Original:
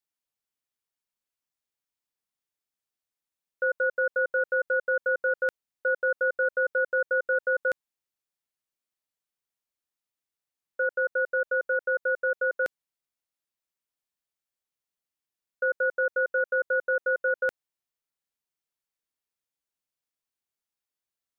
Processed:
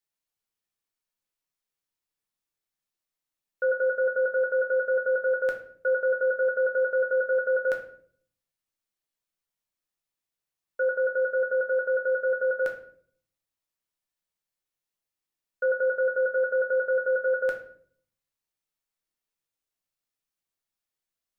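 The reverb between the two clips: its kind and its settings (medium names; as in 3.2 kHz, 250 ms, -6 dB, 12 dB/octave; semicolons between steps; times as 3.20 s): simulated room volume 70 m³, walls mixed, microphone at 0.58 m; trim -1 dB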